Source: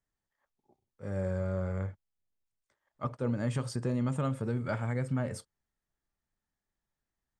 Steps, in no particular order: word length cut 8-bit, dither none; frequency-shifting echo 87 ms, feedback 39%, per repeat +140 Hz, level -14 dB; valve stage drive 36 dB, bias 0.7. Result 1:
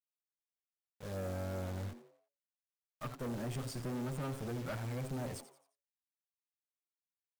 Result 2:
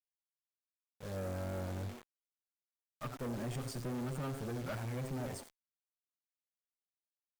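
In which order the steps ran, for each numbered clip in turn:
word length cut > valve stage > frequency-shifting echo; frequency-shifting echo > word length cut > valve stage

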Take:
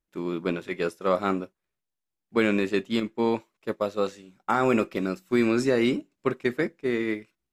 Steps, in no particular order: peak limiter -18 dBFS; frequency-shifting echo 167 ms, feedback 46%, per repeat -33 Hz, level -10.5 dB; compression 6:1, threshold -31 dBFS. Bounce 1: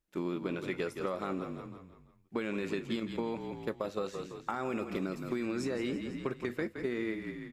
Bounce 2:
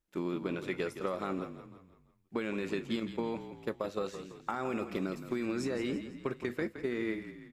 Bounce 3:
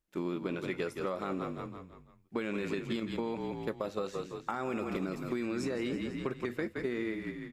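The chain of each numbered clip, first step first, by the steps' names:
peak limiter > frequency-shifting echo > compression; peak limiter > compression > frequency-shifting echo; frequency-shifting echo > peak limiter > compression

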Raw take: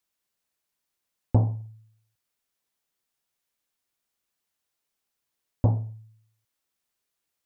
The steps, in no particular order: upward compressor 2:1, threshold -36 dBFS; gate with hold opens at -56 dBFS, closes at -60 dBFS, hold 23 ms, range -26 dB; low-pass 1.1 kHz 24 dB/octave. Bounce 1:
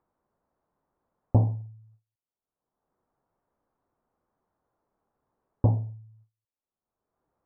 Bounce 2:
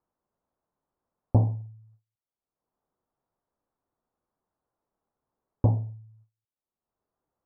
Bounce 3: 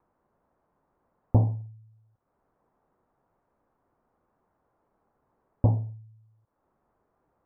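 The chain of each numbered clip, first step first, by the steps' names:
gate with hold > low-pass > upward compressor; gate with hold > upward compressor > low-pass; upward compressor > gate with hold > low-pass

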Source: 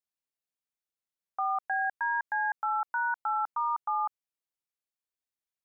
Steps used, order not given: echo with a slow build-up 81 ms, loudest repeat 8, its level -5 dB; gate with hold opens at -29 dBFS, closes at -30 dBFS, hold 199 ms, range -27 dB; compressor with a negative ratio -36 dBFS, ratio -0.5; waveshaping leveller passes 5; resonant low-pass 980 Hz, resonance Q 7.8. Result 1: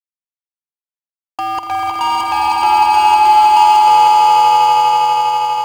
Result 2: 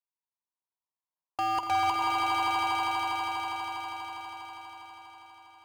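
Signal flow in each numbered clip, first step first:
compressor with a negative ratio > resonant low-pass > gate with hold > waveshaping leveller > echo with a slow build-up; resonant low-pass > compressor with a negative ratio > gate with hold > waveshaping leveller > echo with a slow build-up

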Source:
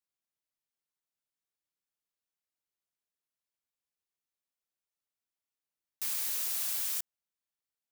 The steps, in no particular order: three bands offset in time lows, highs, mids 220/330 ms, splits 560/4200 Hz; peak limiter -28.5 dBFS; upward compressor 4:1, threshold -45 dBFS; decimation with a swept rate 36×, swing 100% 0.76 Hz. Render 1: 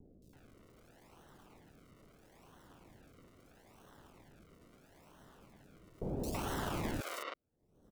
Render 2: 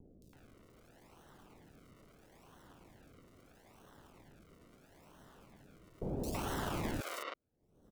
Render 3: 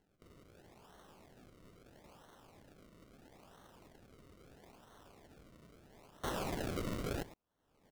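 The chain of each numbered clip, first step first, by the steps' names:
upward compressor > decimation with a swept rate > three bands offset in time > peak limiter; decimation with a swept rate > upward compressor > three bands offset in time > peak limiter; peak limiter > upward compressor > three bands offset in time > decimation with a swept rate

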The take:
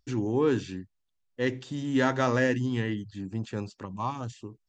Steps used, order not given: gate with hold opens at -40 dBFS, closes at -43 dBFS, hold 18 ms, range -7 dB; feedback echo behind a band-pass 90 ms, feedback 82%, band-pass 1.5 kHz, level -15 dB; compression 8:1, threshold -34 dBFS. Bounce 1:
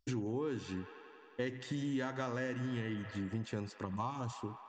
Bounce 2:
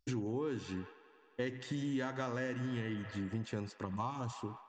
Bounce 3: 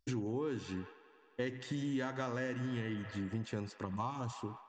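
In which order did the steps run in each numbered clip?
gate with hold > feedback echo behind a band-pass > compression; feedback echo behind a band-pass > compression > gate with hold; feedback echo behind a band-pass > gate with hold > compression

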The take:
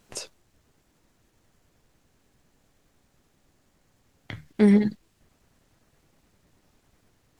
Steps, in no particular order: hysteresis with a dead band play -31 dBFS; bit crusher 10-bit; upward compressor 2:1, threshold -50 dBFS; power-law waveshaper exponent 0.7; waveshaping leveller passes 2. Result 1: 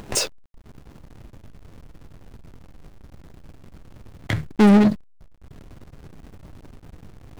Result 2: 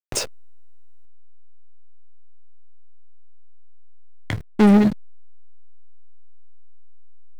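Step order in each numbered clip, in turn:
upward compressor > power-law waveshaper > waveshaping leveller > hysteresis with a dead band > bit crusher; waveshaping leveller > bit crusher > upward compressor > hysteresis with a dead band > power-law waveshaper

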